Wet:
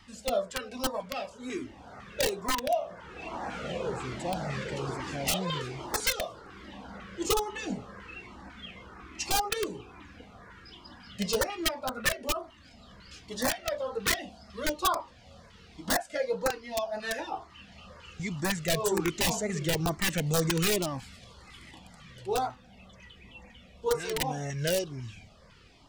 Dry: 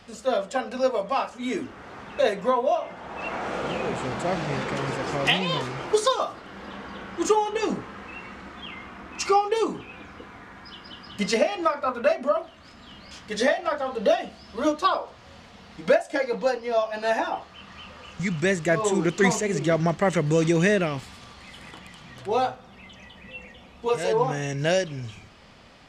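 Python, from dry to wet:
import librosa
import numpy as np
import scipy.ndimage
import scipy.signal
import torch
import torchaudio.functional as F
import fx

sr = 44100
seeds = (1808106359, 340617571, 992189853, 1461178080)

y = (np.mod(10.0 ** (14.0 / 20.0) * x + 1.0, 2.0) - 1.0) / 10.0 ** (14.0 / 20.0)
y = fx.filter_lfo_notch(y, sr, shape='saw_up', hz=2.0, low_hz=510.0, high_hz=3500.0, q=0.96)
y = fx.comb_cascade(y, sr, direction='falling', hz=1.2)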